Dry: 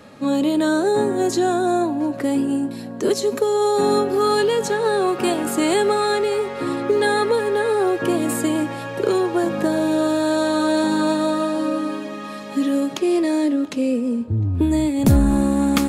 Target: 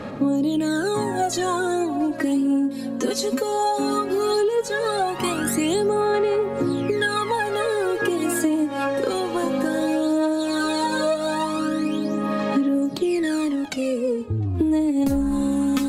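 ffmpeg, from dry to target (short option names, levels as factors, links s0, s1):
-af "aphaser=in_gain=1:out_gain=1:delay=3.9:decay=0.76:speed=0.16:type=sinusoidal,acompressor=threshold=0.112:ratio=6"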